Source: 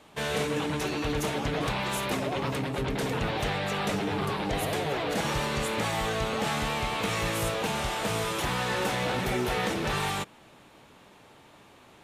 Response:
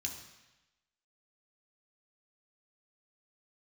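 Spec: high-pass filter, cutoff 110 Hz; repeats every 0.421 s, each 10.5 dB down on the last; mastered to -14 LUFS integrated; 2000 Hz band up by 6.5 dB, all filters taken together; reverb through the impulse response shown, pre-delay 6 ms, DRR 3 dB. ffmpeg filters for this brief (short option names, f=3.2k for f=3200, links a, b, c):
-filter_complex "[0:a]highpass=110,equalizer=f=2k:t=o:g=8,aecho=1:1:421|842|1263:0.299|0.0896|0.0269,asplit=2[a][b];[1:a]atrim=start_sample=2205,adelay=6[c];[b][c]afir=irnorm=-1:irlink=0,volume=-2.5dB[d];[a][d]amix=inputs=2:normalize=0,volume=10dB"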